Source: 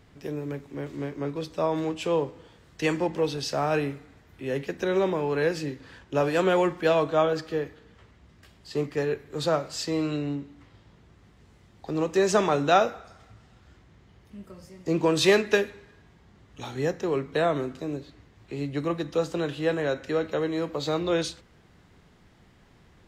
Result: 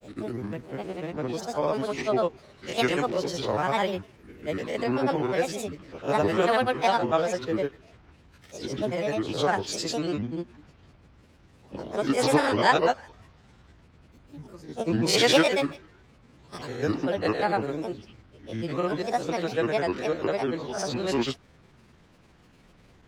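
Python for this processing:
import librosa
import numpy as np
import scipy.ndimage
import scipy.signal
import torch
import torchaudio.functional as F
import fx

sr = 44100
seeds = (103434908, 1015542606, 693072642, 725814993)

y = fx.spec_swells(x, sr, rise_s=0.47)
y = fx.granulator(y, sr, seeds[0], grain_ms=100.0, per_s=20.0, spray_ms=100.0, spread_st=7)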